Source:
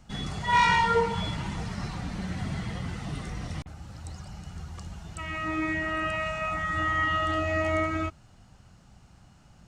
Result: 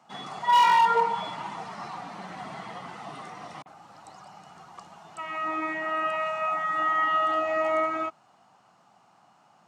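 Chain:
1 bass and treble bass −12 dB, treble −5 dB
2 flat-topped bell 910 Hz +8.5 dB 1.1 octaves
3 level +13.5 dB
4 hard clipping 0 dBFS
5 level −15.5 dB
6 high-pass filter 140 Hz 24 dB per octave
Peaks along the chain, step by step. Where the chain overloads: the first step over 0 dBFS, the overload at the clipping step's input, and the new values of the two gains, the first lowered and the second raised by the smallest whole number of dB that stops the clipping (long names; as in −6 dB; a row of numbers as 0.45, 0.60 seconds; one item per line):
−11.0, −5.5, +8.0, 0.0, −15.5, −12.0 dBFS
step 3, 8.0 dB
step 3 +5.5 dB, step 5 −7.5 dB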